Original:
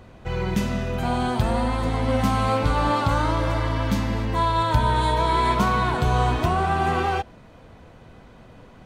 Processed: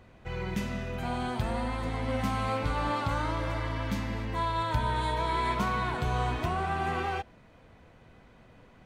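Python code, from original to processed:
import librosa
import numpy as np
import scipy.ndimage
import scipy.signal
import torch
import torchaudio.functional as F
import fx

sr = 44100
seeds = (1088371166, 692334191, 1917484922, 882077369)

y = fx.peak_eq(x, sr, hz=2100.0, db=4.5, octaves=0.84)
y = y * librosa.db_to_amplitude(-9.0)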